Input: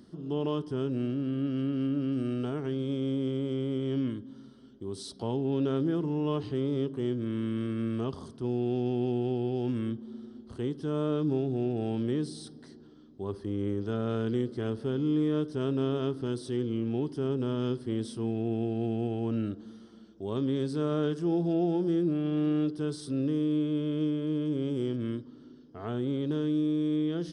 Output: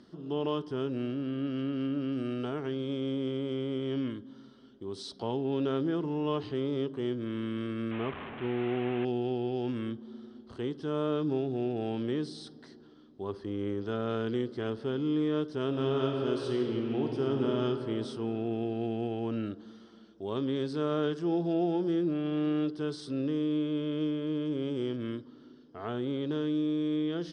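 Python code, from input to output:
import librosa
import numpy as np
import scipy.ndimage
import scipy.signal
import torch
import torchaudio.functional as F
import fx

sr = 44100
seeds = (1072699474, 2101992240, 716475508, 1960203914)

y = fx.delta_mod(x, sr, bps=16000, step_db=-35.0, at=(7.91, 9.05))
y = fx.reverb_throw(y, sr, start_s=15.66, length_s=1.88, rt60_s=2.9, drr_db=1.0)
y = scipy.signal.sosfilt(scipy.signal.butter(2, 5000.0, 'lowpass', fs=sr, output='sos'), y)
y = fx.low_shelf(y, sr, hz=310.0, db=-9.5)
y = y * librosa.db_to_amplitude(3.0)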